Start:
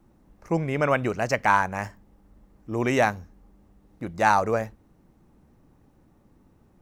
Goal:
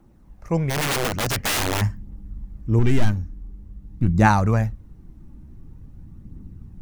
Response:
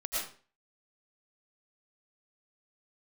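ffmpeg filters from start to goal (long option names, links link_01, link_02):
-filter_complex "[0:a]asettb=1/sr,asplit=3[link_01][link_02][link_03];[link_01]atrim=end=2.794[link_04];[link_02]atrim=start=2.79:end=4.08,asetpts=PTS-STARTPTS,afade=type=in:duration=0.004:curve=qsin,afade=type=out:start_time=1.286:duration=0.004:curve=qsin,aeval=exprs='(tanh(17.8*val(0)+0.55)-tanh(0.55))/17.8':channel_layout=same[link_05];[link_03]atrim=start=4.076[link_06];[link_04][link_05]acrossfade=duration=0.004:curve1=hsin:curve2=qsin[link_07];[link_07][link_06]acrossfade=duration=0.004:curve1=qsin:curve2=hsin,aphaser=in_gain=1:out_gain=1:delay=3.6:decay=0.32:speed=0.47:type=triangular,asubboost=boost=11:cutoff=200,asplit=3[link_08][link_09][link_10];[link_08]afade=type=out:start_time=0.69:duration=0.02[link_11];[link_09]aeval=exprs='(mod(8.91*val(0)+1,2)-1)/8.91':channel_layout=same,afade=type=in:start_time=0.69:duration=0.02,afade=type=out:start_time=1.8:duration=0.02[link_12];[link_10]afade=type=in:start_time=1.8:duration=0.02[link_13];[link_11][link_12][link_13]amix=inputs=3:normalize=0,volume=1.5dB"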